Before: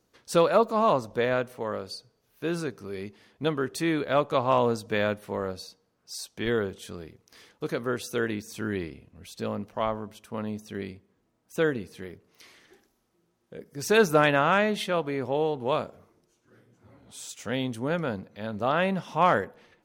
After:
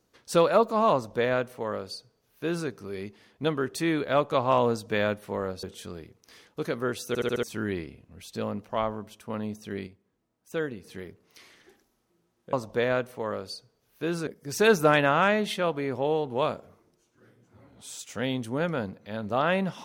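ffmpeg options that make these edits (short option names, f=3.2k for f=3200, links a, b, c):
-filter_complex "[0:a]asplit=11[a][b][c][d][e][f][g][h][i][j][k];[a]atrim=end=5.632[l];[b]atrim=start=6.668:end=8.192[m];[c]atrim=start=8.118:end=8.192[n];[d]atrim=start=8.118:end=8.192[o];[e]atrim=start=8.118:end=8.192[p];[f]atrim=start=8.118:end=8.192[q];[g]atrim=start=8.468:end=10.912[r];[h]atrim=start=10.908:end=11.882,asetpts=PTS-STARTPTS,volume=-5.5dB[s];[i]atrim=start=11.878:end=13.572[t];[j]atrim=start=0.938:end=2.682[u];[k]atrim=start=13.568[v];[l][m]acrossfade=d=0.004:c1=hsin:c2=hsin[w];[w][n]acrossfade=d=0.004:c1=hsin:c2=hsin[x];[x][o]acrossfade=d=0.004:c1=hsin:c2=hsin[y];[y][p]acrossfade=d=0.004:c1=hsin:c2=hsin[z];[z][q]acrossfade=d=0.004:c1=hsin:c2=hsin[aa];[aa][r]acrossfade=d=0.004:c1=hsin:c2=hsin[ab];[ab][s]acrossfade=d=0.004:c1=hsin:c2=hsin[ac];[ac][t]acrossfade=d=0.004:c1=hsin:c2=hsin[ad];[ad][u]acrossfade=d=0.004:c1=hsin:c2=hsin[ae];[ae][v]acrossfade=d=0.004:c1=hsin:c2=hsin"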